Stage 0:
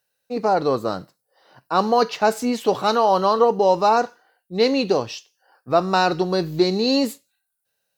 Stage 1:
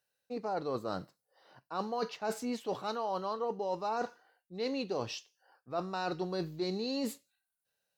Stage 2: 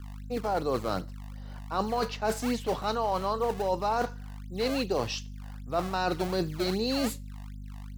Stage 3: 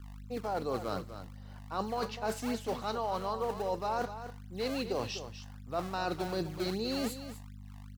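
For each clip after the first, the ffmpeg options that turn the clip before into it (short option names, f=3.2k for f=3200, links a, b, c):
-af "highshelf=f=10k:g=-4.5,areverse,acompressor=threshold=-25dB:ratio=6,areverse,volume=-7dB"
-filter_complex "[0:a]aeval=exprs='val(0)+0.00501*(sin(2*PI*50*n/s)+sin(2*PI*2*50*n/s)/2+sin(2*PI*3*50*n/s)/3+sin(2*PI*4*50*n/s)/4+sin(2*PI*5*50*n/s)/5)':c=same,acrossover=split=340[a][b];[a]acrusher=samples=27:mix=1:aa=0.000001:lfo=1:lforange=43.2:lforate=2.6[c];[c][b]amix=inputs=2:normalize=0,volume=6.5dB"
-af "aecho=1:1:249:0.282,volume=-5.5dB"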